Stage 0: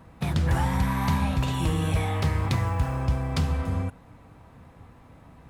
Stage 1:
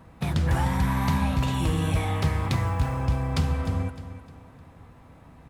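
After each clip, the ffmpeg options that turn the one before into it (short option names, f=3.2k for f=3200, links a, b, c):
-af "aecho=1:1:305|610|915|1220:0.224|0.0806|0.029|0.0104"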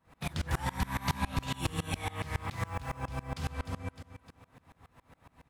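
-af "tiltshelf=f=720:g=-4.5,aeval=exprs='val(0)*pow(10,-26*if(lt(mod(-7.2*n/s,1),2*abs(-7.2)/1000),1-mod(-7.2*n/s,1)/(2*abs(-7.2)/1000),(mod(-7.2*n/s,1)-2*abs(-7.2)/1000)/(1-2*abs(-7.2)/1000))/20)':c=same"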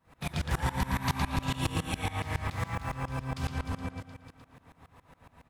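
-filter_complex "[0:a]asplit=2[a][b];[b]adelay=114,lowpass=f=5k:p=1,volume=-3.5dB,asplit=2[c][d];[d]adelay=114,lowpass=f=5k:p=1,volume=0.26,asplit=2[e][f];[f]adelay=114,lowpass=f=5k:p=1,volume=0.26,asplit=2[g][h];[h]adelay=114,lowpass=f=5k:p=1,volume=0.26[i];[a][c][e][g][i]amix=inputs=5:normalize=0,volume=1dB"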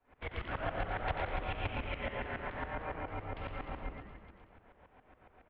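-filter_complex "[0:a]asplit=8[a][b][c][d][e][f][g][h];[b]adelay=90,afreqshift=-130,volume=-8.5dB[i];[c]adelay=180,afreqshift=-260,volume=-13.2dB[j];[d]adelay=270,afreqshift=-390,volume=-18dB[k];[e]adelay=360,afreqshift=-520,volume=-22.7dB[l];[f]adelay=450,afreqshift=-650,volume=-27.4dB[m];[g]adelay=540,afreqshift=-780,volume=-32.2dB[n];[h]adelay=630,afreqshift=-910,volume=-36.9dB[o];[a][i][j][k][l][m][n][o]amix=inputs=8:normalize=0,highpass=f=160:t=q:w=0.5412,highpass=f=160:t=q:w=1.307,lowpass=f=3.2k:t=q:w=0.5176,lowpass=f=3.2k:t=q:w=0.7071,lowpass=f=3.2k:t=q:w=1.932,afreqshift=-230,volume=-3dB"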